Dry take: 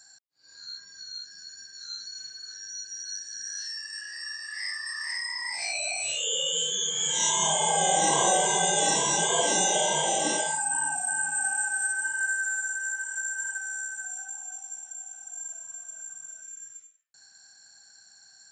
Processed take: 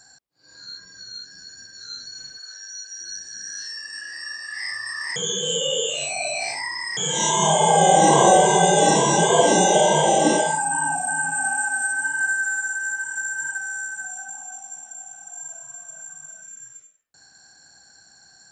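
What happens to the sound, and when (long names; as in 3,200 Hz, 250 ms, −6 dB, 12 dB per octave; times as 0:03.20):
0:02.38–0:03.01: high-pass filter 550 Hz 24 dB per octave
0:05.16–0:06.97: reverse
whole clip: tilt shelving filter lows +6.5 dB, about 1,100 Hz; level +8 dB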